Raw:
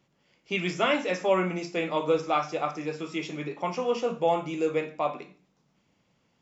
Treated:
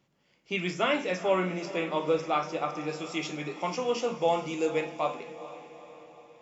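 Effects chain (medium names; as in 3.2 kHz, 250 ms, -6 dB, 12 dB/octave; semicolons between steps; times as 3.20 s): 2.89–5.15 s: treble shelf 3.5 kHz +9 dB; echo that smears into a reverb 455 ms, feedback 53%, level -14 dB; trim -2 dB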